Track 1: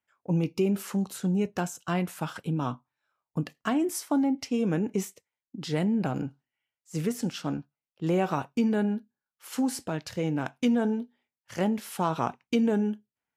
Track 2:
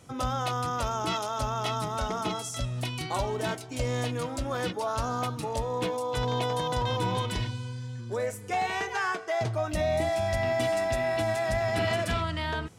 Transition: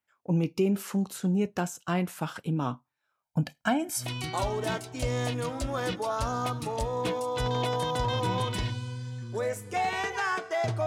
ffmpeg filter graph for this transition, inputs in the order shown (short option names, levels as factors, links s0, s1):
-filter_complex "[0:a]asettb=1/sr,asplit=3[s0][s1][s2];[s0]atrim=end=3.234[s3];[s1]atrim=start=3.23:end=4.12,asetpts=PTS-STARTPTS,afade=t=in:d=0.004:c=qsin,afade=t=out:st=0.886:d=0.004:c=qsin,aecho=1:1:1.3:0.94,atrim=end_sample=39249[s4];[s2]atrim=start=4.116[s5];[s3][s4]acrossfade=d=0.004:c1=hsin:c2=qsin[s6];[s6][s5]acrossfade=d=0.004:c1=qsin:c2=hsin,apad=whole_dur=10.86,atrim=end=10.86,atrim=end=4.12,asetpts=PTS-STARTPTS[s7];[1:a]atrim=start=2.73:end=9.63,asetpts=PTS-STARTPTS[s8];[s7][s8]acrossfade=d=0.16:c1=tri:c2=tri"